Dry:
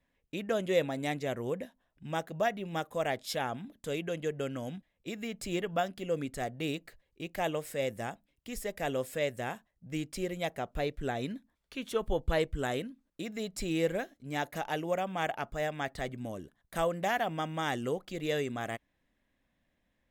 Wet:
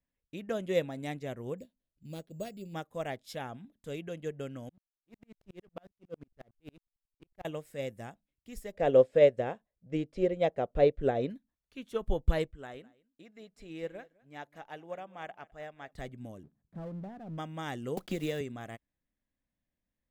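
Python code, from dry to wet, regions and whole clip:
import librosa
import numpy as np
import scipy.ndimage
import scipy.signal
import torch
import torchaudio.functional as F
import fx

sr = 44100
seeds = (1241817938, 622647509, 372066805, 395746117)

y = fx.chain(x, sr, fx.lowpass(hz=8200.0, slope=12),
    fx.band_shelf(hz=1200.0, db=-14.0, octaves=1.7),
    fx.resample_bad(factor=6, down='none', up='hold'), at=(1.58, 2.74))
y = fx.chain(y, sr, fx.peak_eq(hz=8000.0, db=-13.0, octaves=0.38),
    fx.backlash(play_db=-36.5),
    fx.tremolo_decay(direction='swelling', hz=11.0, depth_db=36), at=(4.69, 7.45))
y = fx.chain(y, sr, fx.lowpass(hz=4500.0, slope=12),
    fx.peak_eq(hz=510.0, db=12.5, octaves=0.98), at=(8.73, 11.3))
y = fx.chain(y, sr, fx.lowpass(hz=2300.0, slope=6),
    fx.low_shelf(hz=360.0, db=-11.5),
    fx.echo_single(ms=207, db=-17.0), at=(12.51, 15.93))
y = fx.chain(y, sr, fx.bandpass_q(hz=170.0, q=1.1),
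    fx.power_curve(exponent=0.7), at=(16.43, 17.38))
y = fx.chain(y, sr, fx.block_float(bits=5),
    fx.band_squash(depth_pct=100), at=(17.97, 18.41))
y = fx.low_shelf(y, sr, hz=300.0, db=7.0)
y = fx.upward_expand(y, sr, threshold_db=-48.0, expansion=1.5)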